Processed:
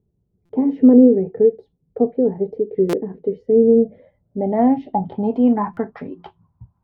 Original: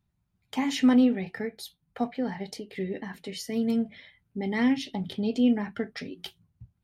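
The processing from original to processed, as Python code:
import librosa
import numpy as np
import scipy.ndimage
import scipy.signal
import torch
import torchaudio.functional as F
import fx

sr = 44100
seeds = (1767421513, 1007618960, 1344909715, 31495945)

y = fx.filter_sweep_lowpass(x, sr, from_hz=440.0, to_hz=990.0, start_s=3.64, end_s=5.44, q=6.1)
y = fx.buffer_glitch(y, sr, at_s=(0.45, 2.89, 5.73), block=256, repeats=6)
y = F.gain(torch.from_numpy(y), 6.5).numpy()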